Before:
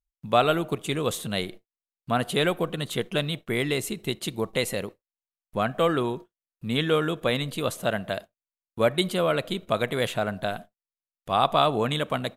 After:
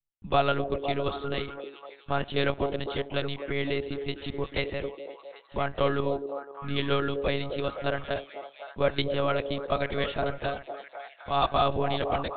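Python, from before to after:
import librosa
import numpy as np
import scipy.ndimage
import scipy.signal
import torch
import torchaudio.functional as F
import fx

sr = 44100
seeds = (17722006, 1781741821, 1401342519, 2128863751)

y = fx.lpc_monotone(x, sr, seeds[0], pitch_hz=140.0, order=10)
y = fx.echo_stepped(y, sr, ms=255, hz=420.0, octaves=0.7, feedback_pct=70, wet_db=-4.5)
y = F.gain(torch.from_numpy(y), -3.0).numpy()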